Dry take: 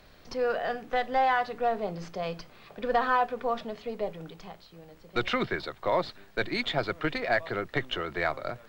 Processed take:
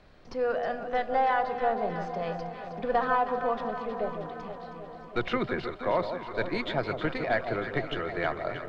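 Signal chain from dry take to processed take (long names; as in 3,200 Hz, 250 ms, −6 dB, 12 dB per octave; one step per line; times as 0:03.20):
low-pass filter 9,200 Hz 12 dB per octave
high-shelf EQ 2,700 Hz −9.5 dB
delay that swaps between a low-pass and a high-pass 158 ms, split 940 Hz, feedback 83%, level −7.5 dB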